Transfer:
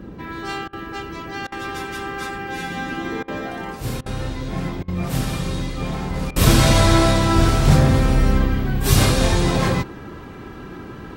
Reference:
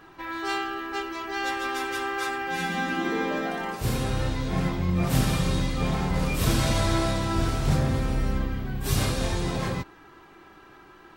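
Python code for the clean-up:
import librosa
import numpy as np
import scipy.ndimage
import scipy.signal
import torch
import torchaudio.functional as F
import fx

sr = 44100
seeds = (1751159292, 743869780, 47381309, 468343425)

y = fx.fix_interpolate(x, sr, at_s=(0.68, 1.47, 3.23, 4.01, 4.83, 6.31), length_ms=49.0)
y = fx.noise_reduce(y, sr, print_start_s=10.1, print_end_s=10.6, reduce_db=15.0)
y = fx.gain(y, sr, db=fx.steps((0.0, 0.0), (6.31, -9.5)))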